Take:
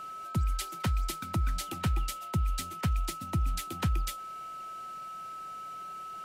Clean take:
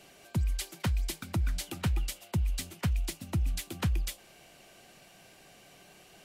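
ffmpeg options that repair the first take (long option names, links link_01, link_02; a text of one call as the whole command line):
ffmpeg -i in.wav -af "bandreject=frequency=1300:width=30" out.wav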